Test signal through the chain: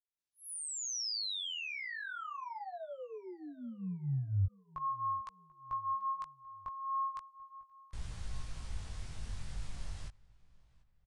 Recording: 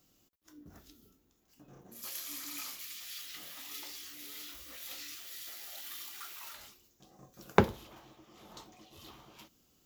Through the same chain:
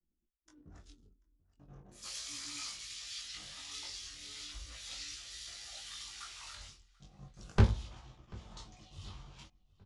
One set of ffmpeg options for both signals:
ffmpeg -i in.wav -filter_complex "[0:a]asoftclip=type=hard:threshold=-20.5dB,adynamicequalizer=threshold=0.00112:dfrequency=4900:dqfactor=1:tfrequency=4900:tqfactor=1:attack=5:release=100:ratio=0.375:range=3:mode=boostabove:tftype=bell,anlmdn=0.0000251,asplit=2[link_01][link_02];[link_02]adelay=738,lowpass=frequency=3700:poles=1,volume=-23.5dB,asplit=2[link_03][link_04];[link_04]adelay=738,lowpass=frequency=3700:poles=1,volume=0.43,asplit=2[link_05][link_06];[link_06]adelay=738,lowpass=frequency=3700:poles=1,volume=0.43[link_07];[link_03][link_05][link_07]amix=inputs=3:normalize=0[link_08];[link_01][link_08]amix=inputs=2:normalize=0,aresample=22050,aresample=44100,asubboost=boost=10:cutoff=100,flanger=delay=17:depth=4.7:speed=0.37,volume=1dB" out.wav

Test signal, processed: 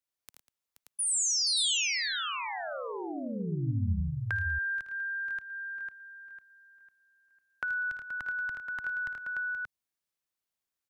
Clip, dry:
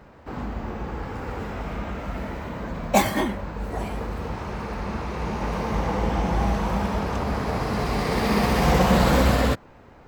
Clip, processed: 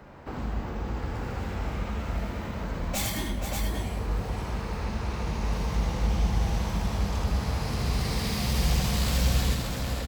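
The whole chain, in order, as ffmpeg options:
ffmpeg -i in.wav -filter_complex "[0:a]volume=17.5dB,asoftclip=hard,volume=-17.5dB,aecho=1:1:56|79|107|195|477|579:0.211|0.562|0.224|0.15|0.335|0.531,acrossover=split=140|3000[link_01][link_02][link_03];[link_02]acompressor=threshold=-35dB:ratio=6[link_04];[link_01][link_04][link_03]amix=inputs=3:normalize=0" out.wav

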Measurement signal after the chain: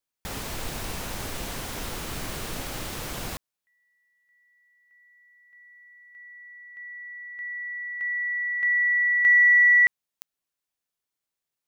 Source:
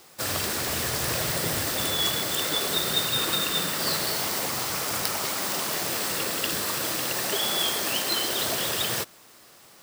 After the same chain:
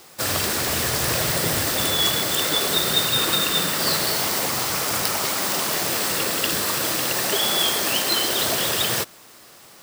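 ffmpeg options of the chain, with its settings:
ffmpeg -i in.wav -af "asoftclip=type=tanh:threshold=-6.5dB,volume=5dB" out.wav

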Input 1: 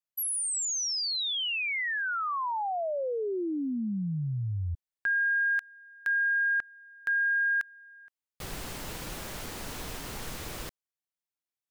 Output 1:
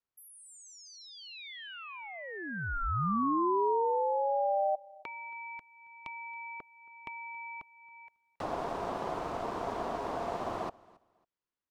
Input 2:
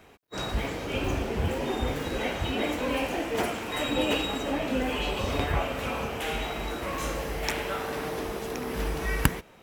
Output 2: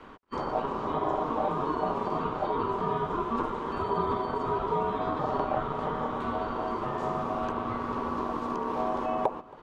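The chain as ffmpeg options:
ffmpeg -i in.wav -filter_complex "[0:a]firequalizer=gain_entry='entry(150,0);entry(260,5);entry(1500,-4);entry(14000,-28)':delay=0.05:min_phase=1,acrossover=split=81|600|2000[link_01][link_02][link_03][link_04];[link_01]acompressor=threshold=-42dB:ratio=2[link_05];[link_02]acompressor=threshold=-37dB:ratio=2[link_06];[link_03]acompressor=threshold=-55dB:ratio=6[link_07];[link_04]acompressor=threshold=-58dB:ratio=6[link_08];[link_05][link_06][link_07][link_08]amix=inputs=4:normalize=0,aeval=exprs='val(0)*sin(2*PI*690*n/s)':channel_layout=same,aecho=1:1:274|548:0.0668|0.0154,volume=7.5dB" out.wav

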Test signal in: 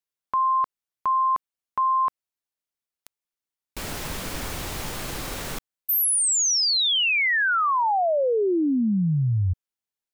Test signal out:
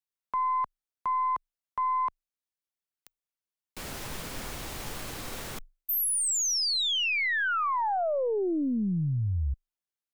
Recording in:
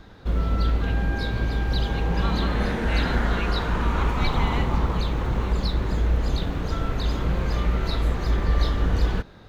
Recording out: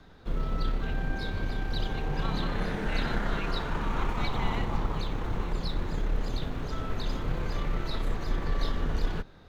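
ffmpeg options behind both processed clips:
ffmpeg -i in.wav -af "afreqshift=-24,aeval=exprs='0.355*(cos(1*acos(clip(val(0)/0.355,-1,1)))-cos(1*PI/2))+0.0158*(cos(4*acos(clip(val(0)/0.355,-1,1)))-cos(4*PI/2))':channel_layout=same,volume=-6dB" out.wav

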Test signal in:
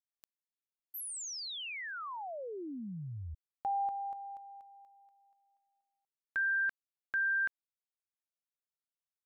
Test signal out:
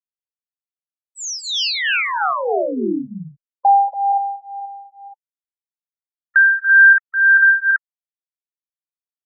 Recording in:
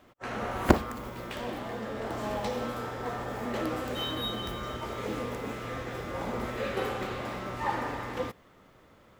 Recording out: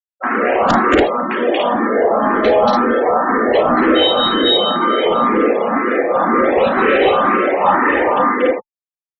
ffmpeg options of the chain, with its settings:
ffmpeg -i in.wav -filter_complex "[0:a]highpass=frequency=230:width=0.5412,highpass=frequency=230:width=1.3066,aresample=16000,asoftclip=type=hard:threshold=-23dB,aresample=44100,afftfilt=real='re*gte(hypot(re,im),0.0141)':imag='im*gte(hypot(re,im),0.0141)':win_size=1024:overlap=0.75,bandreject=frequency=880:width=18,asplit=2[link_01][link_02];[link_02]aecho=0:1:34.99|233.2|285.7:0.316|0.794|0.794[link_03];[link_01][link_03]amix=inputs=2:normalize=0,acrossover=split=5100[link_04][link_05];[link_05]acompressor=threshold=-53dB:ratio=4:attack=1:release=60[link_06];[link_04][link_06]amix=inputs=2:normalize=0,apsyclip=25.5dB,asplit=2[link_07][link_08];[link_08]afreqshift=2[link_09];[link_07][link_09]amix=inputs=2:normalize=1,volume=-4dB" out.wav

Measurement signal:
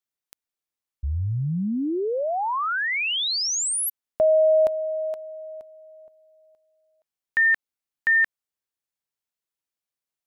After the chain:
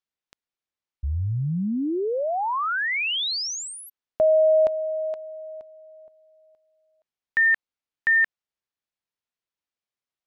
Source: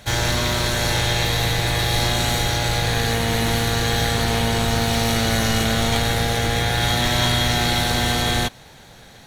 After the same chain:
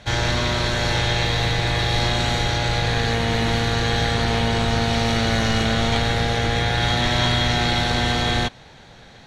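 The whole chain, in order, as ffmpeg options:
ffmpeg -i in.wav -af "lowpass=5000" out.wav

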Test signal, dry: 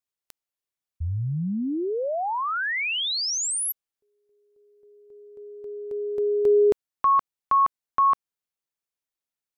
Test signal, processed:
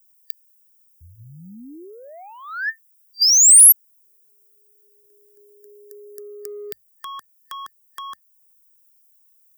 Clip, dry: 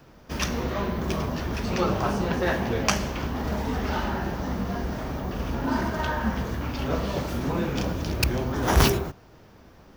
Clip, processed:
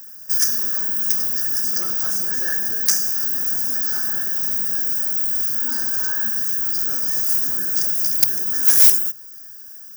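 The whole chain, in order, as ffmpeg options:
ffmpeg -i in.wav -filter_complex "[0:a]afftfilt=real='re*(1-between(b*sr/4096,1800,4700))':imag='im*(1-between(b*sr/4096,1800,4700))':win_size=4096:overlap=0.75,asplit=2[link_01][link_02];[link_02]acompressor=threshold=-28dB:ratio=6:attack=97:release=380:knee=6:detection=rms,volume=2dB[link_03];[link_01][link_03]amix=inputs=2:normalize=0,aemphasis=mode=production:type=riaa,acrossover=split=130|4900[link_04][link_05][link_06];[link_06]asoftclip=type=tanh:threshold=-0.5dB[link_07];[link_04][link_05][link_07]amix=inputs=3:normalize=0,bandreject=frequency=50:width_type=h:width=6,bandreject=frequency=100:width_type=h:width=6,acontrast=77,aexciter=amount=3.3:drive=2.5:freq=10000,equalizer=frequency=500:width_type=o:width=1:gain=-6,equalizer=frequency=1000:width_type=o:width=1:gain=-12,equalizer=frequency=2000:width_type=o:width=1:gain=12,equalizer=frequency=4000:width_type=o:width=1:gain=6,equalizer=frequency=8000:width_type=o:width=1:gain=11,volume=-16.5dB" out.wav

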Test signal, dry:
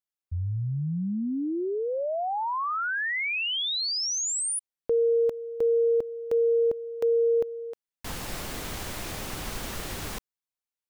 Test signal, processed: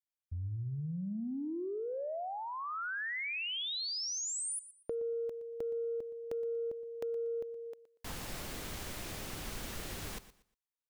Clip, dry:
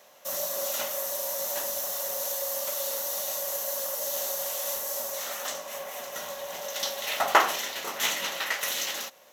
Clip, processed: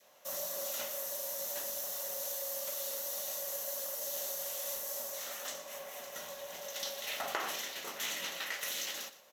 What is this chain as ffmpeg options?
ffmpeg -i in.wav -af "adynamicequalizer=threshold=0.00708:dfrequency=930:dqfactor=1.2:tfrequency=930:tqfactor=1.2:attack=5:release=100:ratio=0.4:range=2.5:mode=cutabove:tftype=bell,acompressor=threshold=-31dB:ratio=4:attack=14:release=28:knee=1:detection=peak,aecho=1:1:119|238|357:0.168|0.0436|0.0113,volume=-7dB" out.wav

